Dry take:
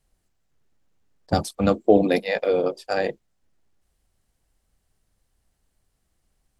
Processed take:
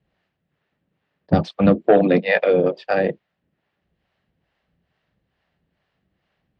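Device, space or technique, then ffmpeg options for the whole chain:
guitar amplifier with harmonic tremolo: -filter_complex "[0:a]acrossover=split=480[s0][s1];[s0]aeval=exprs='val(0)*(1-0.7/2+0.7/2*cos(2*PI*2.3*n/s))':c=same[s2];[s1]aeval=exprs='val(0)*(1-0.7/2-0.7/2*cos(2*PI*2.3*n/s))':c=same[s3];[s2][s3]amix=inputs=2:normalize=0,asoftclip=type=tanh:threshold=0.237,highpass=98,equalizer=f=170:t=q:w=4:g=7,equalizer=f=590:t=q:w=4:g=3,equalizer=f=1800:t=q:w=4:g=5,equalizer=f=2700:t=q:w=4:g=3,lowpass=f=3700:w=0.5412,lowpass=f=3700:w=1.3066,volume=2.37"

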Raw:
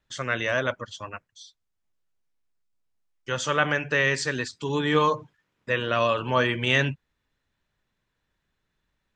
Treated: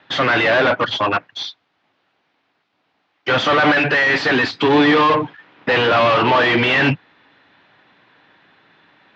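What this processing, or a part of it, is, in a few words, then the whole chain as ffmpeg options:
overdrive pedal into a guitar cabinet: -filter_complex "[0:a]asplit=2[s0][s1];[s1]highpass=f=720:p=1,volume=79.4,asoftclip=type=tanh:threshold=0.531[s2];[s0][s2]amix=inputs=2:normalize=0,lowpass=f=3100:p=1,volume=0.501,highpass=100,equalizer=f=110:t=q:w=4:g=5,equalizer=f=170:t=q:w=4:g=3,equalizer=f=290:t=q:w=4:g=8,equalizer=f=770:t=q:w=4:g=5,lowpass=f=4100:w=0.5412,lowpass=f=4100:w=1.3066,volume=0.75"

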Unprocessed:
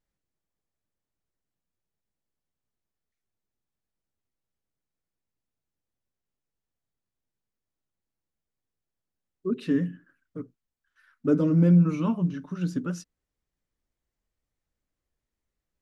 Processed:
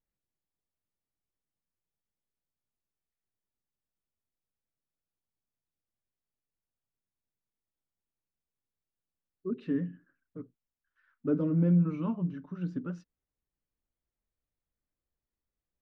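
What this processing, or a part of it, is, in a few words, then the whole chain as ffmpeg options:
phone in a pocket: -af "lowpass=3800,highshelf=f=2500:g=-8.5,volume=0.501"

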